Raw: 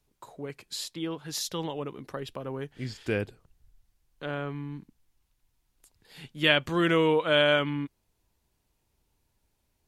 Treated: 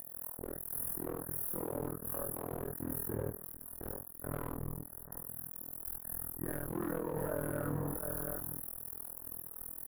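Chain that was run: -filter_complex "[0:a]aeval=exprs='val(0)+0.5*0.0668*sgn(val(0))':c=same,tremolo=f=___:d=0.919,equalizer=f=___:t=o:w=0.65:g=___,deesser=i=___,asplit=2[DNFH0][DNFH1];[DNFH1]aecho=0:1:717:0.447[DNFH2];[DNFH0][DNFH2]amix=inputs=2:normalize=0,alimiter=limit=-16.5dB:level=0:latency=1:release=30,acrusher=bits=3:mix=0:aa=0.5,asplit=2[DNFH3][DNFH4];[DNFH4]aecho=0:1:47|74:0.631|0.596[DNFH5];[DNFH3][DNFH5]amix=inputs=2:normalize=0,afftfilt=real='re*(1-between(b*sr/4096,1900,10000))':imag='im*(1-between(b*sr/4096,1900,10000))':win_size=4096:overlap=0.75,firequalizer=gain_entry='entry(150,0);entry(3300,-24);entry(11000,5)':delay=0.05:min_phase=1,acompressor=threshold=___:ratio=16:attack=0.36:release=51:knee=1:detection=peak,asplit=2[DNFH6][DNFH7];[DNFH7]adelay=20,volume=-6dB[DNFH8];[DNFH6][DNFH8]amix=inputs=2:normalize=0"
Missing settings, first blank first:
41, 6000, 7.5, 0.3, -31dB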